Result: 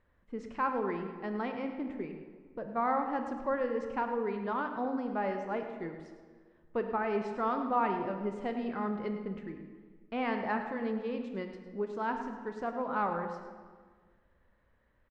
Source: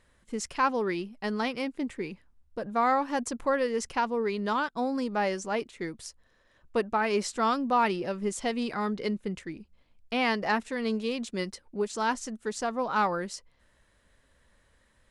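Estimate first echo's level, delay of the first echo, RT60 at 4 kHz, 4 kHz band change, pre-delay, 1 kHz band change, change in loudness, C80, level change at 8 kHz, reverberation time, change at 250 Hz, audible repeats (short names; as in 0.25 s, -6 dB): -12.5 dB, 0.105 s, 1.1 s, -16.0 dB, 17 ms, -4.5 dB, -5.0 dB, 7.5 dB, under -25 dB, 1.6 s, -4.0 dB, 1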